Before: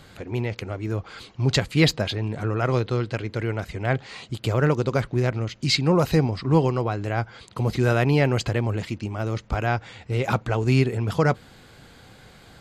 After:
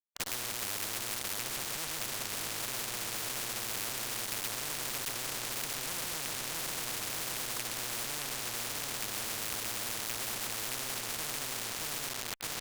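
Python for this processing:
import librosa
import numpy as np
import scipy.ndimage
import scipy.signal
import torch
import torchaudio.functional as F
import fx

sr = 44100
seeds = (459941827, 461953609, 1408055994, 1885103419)

p1 = fx.rattle_buzz(x, sr, strikes_db=-32.0, level_db=-12.0)
p2 = fx.env_lowpass(p1, sr, base_hz=1900.0, full_db=-16.0)
p3 = fx.leveller(p2, sr, passes=3)
p4 = fx.highpass(p3, sr, hz=79.0, slope=6)
p5 = fx.high_shelf(p4, sr, hz=5400.0, db=-9.5)
p6 = p5 + 10.0 ** (-5.5 / 20.0) * np.pad(p5, (int(131 * sr / 1000.0), 0))[:len(p5)]
p7 = fx.env_lowpass_down(p6, sr, base_hz=780.0, full_db=-12.0)
p8 = p7 + fx.echo_feedback(p7, sr, ms=622, feedback_pct=39, wet_db=-4.0, dry=0)
p9 = np.where(np.abs(p8) >= 10.0 ** (-23.5 / 20.0), p8, 0.0)
p10 = fx.tube_stage(p9, sr, drive_db=15.0, bias=0.45)
p11 = fx.spectral_comp(p10, sr, ratio=10.0)
y = p11 * 10.0 ** (-6.5 / 20.0)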